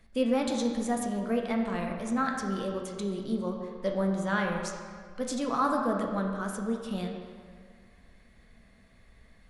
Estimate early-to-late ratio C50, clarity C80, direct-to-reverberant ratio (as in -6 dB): 3.5 dB, 5.0 dB, 1.0 dB